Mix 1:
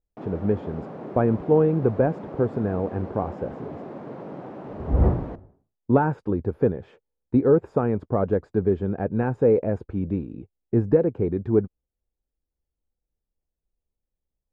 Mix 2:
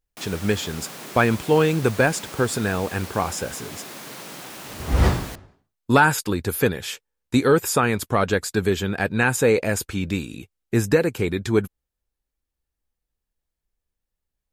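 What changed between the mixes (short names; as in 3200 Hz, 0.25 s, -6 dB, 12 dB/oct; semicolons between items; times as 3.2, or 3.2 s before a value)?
background -6.5 dB; master: remove Chebyshev low-pass 590 Hz, order 2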